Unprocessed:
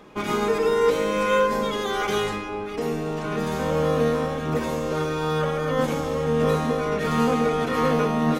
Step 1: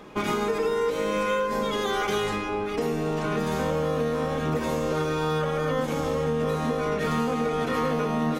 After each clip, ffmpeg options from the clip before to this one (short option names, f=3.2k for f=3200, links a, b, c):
-af "acompressor=threshold=-25dB:ratio=6,volume=2.5dB"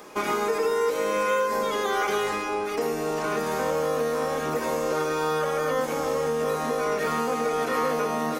-filter_complex "[0:a]bass=f=250:g=-14,treble=f=4k:g=-5,aexciter=amount=3.4:drive=7.5:freq=4.7k,acrossover=split=3300[a][b];[b]acompressor=threshold=-43dB:ratio=4:attack=1:release=60[c];[a][c]amix=inputs=2:normalize=0,volume=2.5dB"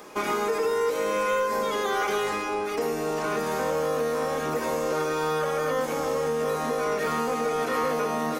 -af "asoftclip=type=tanh:threshold=-15.5dB"